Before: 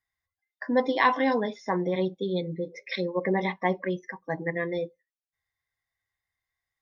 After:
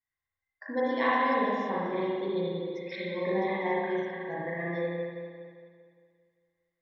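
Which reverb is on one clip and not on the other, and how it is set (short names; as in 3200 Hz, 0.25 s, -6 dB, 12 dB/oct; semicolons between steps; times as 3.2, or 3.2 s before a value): spring tank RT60 2.1 s, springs 35/57 ms, chirp 40 ms, DRR -7.5 dB; gain -10.5 dB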